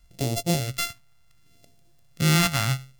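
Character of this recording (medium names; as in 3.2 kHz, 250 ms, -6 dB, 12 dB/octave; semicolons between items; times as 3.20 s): a buzz of ramps at a fixed pitch in blocks of 64 samples; phasing stages 2, 0.68 Hz, lowest notch 440–1400 Hz; a quantiser's noise floor 12-bit, dither none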